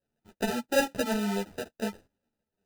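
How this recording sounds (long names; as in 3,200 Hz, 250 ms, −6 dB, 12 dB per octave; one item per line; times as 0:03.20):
aliases and images of a low sample rate 1,100 Hz, jitter 0%
sample-and-hold tremolo
a shimmering, thickened sound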